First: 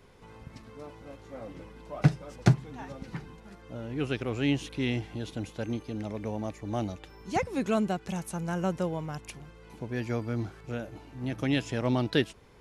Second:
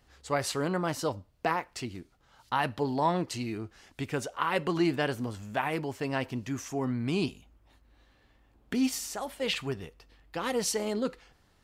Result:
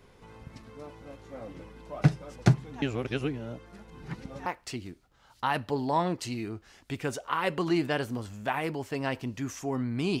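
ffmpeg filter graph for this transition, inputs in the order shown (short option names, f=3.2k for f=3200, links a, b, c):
-filter_complex "[0:a]apad=whole_dur=10.2,atrim=end=10.2,asplit=2[a][b];[a]atrim=end=2.822[c];[b]atrim=start=2.818:end=4.462,asetpts=PTS-STARTPTS,areverse[d];[1:a]atrim=start=1.548:end=7.29[e];[c][d]acrossfade=d=0.004:c1=hsin:c2=hsin[f];[f][e]acrossfade=d=0.004:c1=hsin:c2=hsin"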